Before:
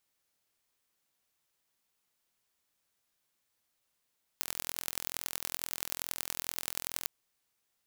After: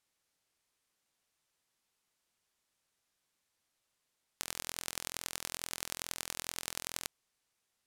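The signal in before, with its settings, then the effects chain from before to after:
pulse train 42.3 per s, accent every 4, -5 dBFS 2.65 s
low-pass 11 kHz 12 dB/octave

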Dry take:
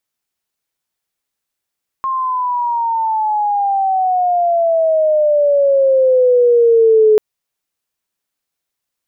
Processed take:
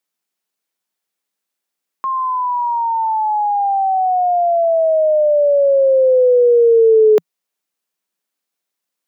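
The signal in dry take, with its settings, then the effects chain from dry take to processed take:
gliding synth tone sine, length 5.14 s, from 1.07 kHz, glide -16 st, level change +9.5 dB, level -6 dB
elliptic high-pass 170 Hz

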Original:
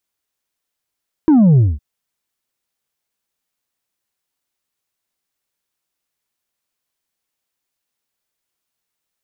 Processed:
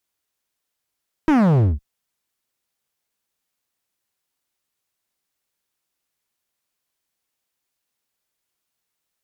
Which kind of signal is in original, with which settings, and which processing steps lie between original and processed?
sub drop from 330 Hz, over 0.51 s, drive 3.5 dB, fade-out 0.21 s, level -7.5 dB
dynamic bell 240 Hz, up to +4 dB, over -21 dBFS, Q 0.94; one-sided clip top -21 dBFS, bottom -10.5 dBFS

